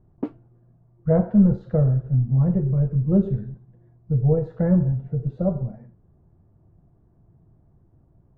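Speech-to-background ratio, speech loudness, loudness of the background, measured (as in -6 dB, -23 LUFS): 13.0 dB, -21.5 LUFS, -34.5 LUFS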